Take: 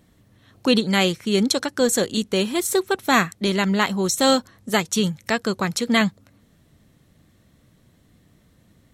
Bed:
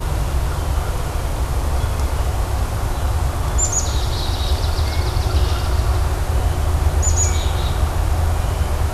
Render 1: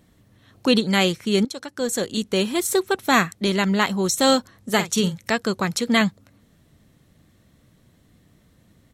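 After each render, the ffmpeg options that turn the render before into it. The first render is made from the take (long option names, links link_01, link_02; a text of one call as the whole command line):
ffmpeg -i in.wav -filter_complex "[0:a]asplit=3[link_01][link_02][link_03];[link_01]afade=type=out:start_time=4.74:duration=0.02[link_04];[link_02]asplit=2[link_05][link_06];[link_06]adelay=49,volume=-11dB[link_07];[link_05][link_07]amix=inputs=2:normalize=0,afade=type=in:start_time=4.74:duration=0.02,afade=type=out:start_time=5.17:duration=0.02[link_08];[link_03]afade=type=in:start_time=5.17:duration=0.02[link_09];[link_04][link_08][link_09]amix=inputs=3:normalize=0,asplit=2[link_10][link_11];[link_10]atrim=end=1.45,asetpts=PTS-STARTPTS,afade=type=out:start_time=1.446:duration=0.004:curve=hsin:silence=0.16788[link_12];[link_11]atrim=start=1.45,asetpts=PTS-STARTPTS,afade=type=in:duration=0.93:silence=0.16788[link_13];[link_12][link_13]concat=n=2:v=0:a=1" out.wav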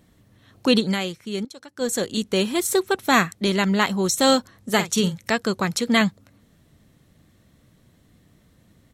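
ffmpeg -i in.wav -filter_complex "[0:a]asplit=3[link_01][link_02][link_03];[link_01]atrim=end=1.19,asetpts=PTS-STARTPTS,afade=type=out:start_time=0.92:duration=0.27:curve=exp:silence=0.375837[link_04];[link_02]atrim=start=1.19:end=1.55,asetpts=PTS-STARTPTS,volume=-8.5dB[link_05];[link_03]atrim=start=1.55,asetpts=PTS-STARTPTS,afade=type=in:duration=0.27:curve=exp:silence=0.375837[link_06];[link_04][link_05][link_06]concat=n=3:v=0:a=1" out.wav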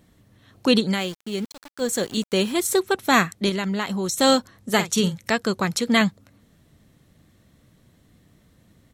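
ffmpeg -i in.wav -filter_complex "[0:a]asettb=1/sr,asplit=3[link_01][link_02][link_03];[link_01]atrim=end=0.974[link_04];[link_02]atrim=start=0.97:end=2.53,asetpts=PTS-STARTPTS,afade=type=in:duration=0.004:curve=qsin,afade=type=out:start_time=1.556:duration=0.004:curve=qsin,aeval=exprs='val(0)*gte(abs(val(0)),0.0126)':channel_layout=same[link_05];[link_03]atrim=start=2.526[link_06];[link_04][link_05]acrossfade=duration=0.004:curve1=hsin:curve2=qsin[link_07];[link_07][link_06]acrossfade=duration=0.004:curve1=qsin:curve2=hsin,asettb=1/sr,asplit=3[link_08][link_09][link_10];[link_08]atrim=end=3.494[link_11];[link_09]atrim=start=3.49:end=4.2,asetpts=PTS-STARTPTS,afade=type=in:duration=0.004:curve=qsin,afade=type=out:start_time=0.706:duration=0.004:curve=qsin,acompressor=threshold=-23dB:ratio=3:attack=3.2:release=140:knee=1:detection=peak[link_12];[link_10]atrim=start=4.196[link_13];[link_11][link_12]acrossfade=duration=0.004:curve1=hsin:curve2=qsin[link_14];[link_14][link_13]acrossfade=duration=0.004:curve1=qsin:curve2=hsin" out.wav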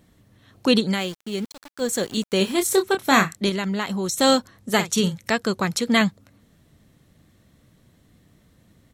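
ffmpeg -i in.wav -filter_complex "[0:a]asettb=1/sr,asplit=3[link_01][link_02][link_03];[link_01]atrim=end=2.384[link_04];[link_02]atrim=start=2.38:end=3.37,asetpts=PTS-STARTPTS,afade=type=in:duration=0.004:curve=qsin,afade=type=out:start_time=0.986:duration=0.004:curve=qsin,asplit=2[link_05][link_06];[link_06]adelay=26,volume=-7dB[link_07];[link_05][link_07]amix=inputs=2:normalize=0,atrim=end_sample=43659[link_08];[link_03]atrim=start=3.366[link_09];[link_04][link_08]acrossfade=duration=0.004:curve1=hsin:curve2=qsin[link_10];[link_10][link_09]acrossfade=duration=0.004:curve1=qsin:curve2=hsin" out.wav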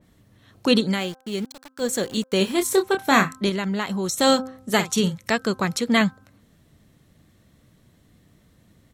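ffmpeg -i in.wav -af "bandreject=frequency=260.3:width_type=h:width=4,bandreject=frequency=520.6:width_type=h:width=4,bandreject=frequency=780.9:width_type=h:width=4,bandreject=frequency=1041.2:width_type=h:width=4,bandreject=frequency=1301.5:width_type=h:width=4,bandreject=frequency=1561.8:width_type=h:width=4,adynamicequalizer=threshold=0.0178:dfrequency=2800:dqfactor=0.7:tfrequency=2800:tqfactor=0.7:attack=5:release=100:ratio=0.375:range=2:mode=cutabove:tftype=highshelf" out.wav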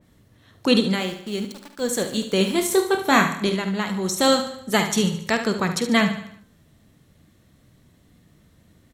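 ffmpeg -i in.wav -filter_complex "[0:a]asplit=2[link_01][link_02];[link_02]adelay=48,volume=-12dB[link_03];[link_01][link_03]amix=inputs=2:normalize=0,asplit=2[link_04][link_05];[link_05]aecho=0:1:73|146|219|292|365:0.316|0.152|0.0729|0.035|0.0168[link_06];[link_04][link_06]amix=inputs=2:normalize=0" out.wav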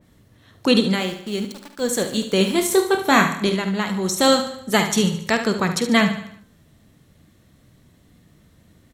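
ffmpeg -i in.wav -af "volume=2dB,alimiter=limit=-3dB:level=0:latency=1" out.wav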